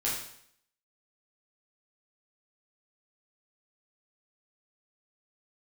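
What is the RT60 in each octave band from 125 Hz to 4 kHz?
0.65, 0.65, 0.65, 0.65, 0.65, 0.65 seconds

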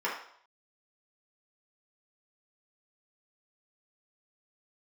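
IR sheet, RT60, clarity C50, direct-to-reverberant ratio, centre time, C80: 0.65 s, 4.5 dB, −6.5 dB, 37 ms, 8.5 dB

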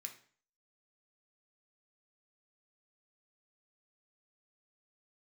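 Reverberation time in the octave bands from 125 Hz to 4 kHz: 0.50, 0.50, 0.45, 0.45, 0.45, 0.40 seconds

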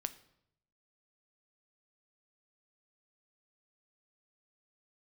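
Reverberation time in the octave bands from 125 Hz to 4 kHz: 1.0, 0.85, 0.80, 0.70, 0.65, 0.60 seconds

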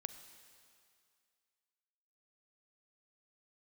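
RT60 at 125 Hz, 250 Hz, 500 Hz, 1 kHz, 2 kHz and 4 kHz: 2.1, 2.1, 2.2, 2.3, 2.3, 2.3 seconds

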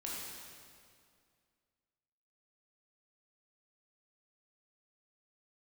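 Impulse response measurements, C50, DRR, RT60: −2.0 dB, −5.5 dB, 2.2 s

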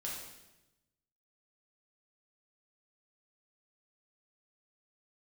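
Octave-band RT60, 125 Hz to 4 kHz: 1.4, 1.2, 1.0, 0.90, 0.95, 0.90 seconds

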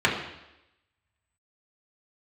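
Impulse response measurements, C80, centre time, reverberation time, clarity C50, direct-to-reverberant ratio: 8.0 dB, 34 ms, 0.90 s, 5.5 dB, −4.5 dB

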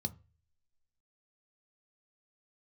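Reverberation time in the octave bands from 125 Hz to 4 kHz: 0.55, 0.30, 0.35, 0.30, 0.45, 0.30 seconds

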